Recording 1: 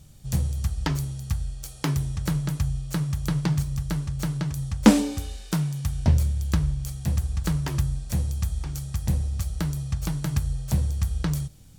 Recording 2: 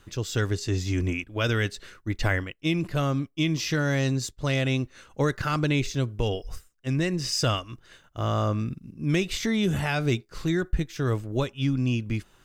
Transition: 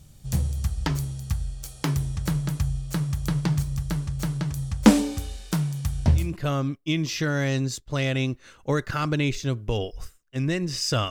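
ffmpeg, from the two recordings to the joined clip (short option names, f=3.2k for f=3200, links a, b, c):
-filter_complex "[0:a]apad=whole_dur=11.1,atrim=end=11.1,atrim=end=6.36,asetpts=PTS-STARTPTS[a];[1:a]atrim=start=2.65:end=7.61,asetpts=PTS-STARTPTS[b];[a][b]acrossfade=d=0.22:c1=tri:c2=tri"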